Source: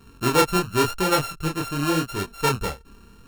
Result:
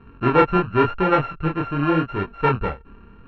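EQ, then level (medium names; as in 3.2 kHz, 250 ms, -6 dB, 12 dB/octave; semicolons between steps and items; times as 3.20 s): low-pass 2.4 kHz 24 dB/octave; +3.5 dB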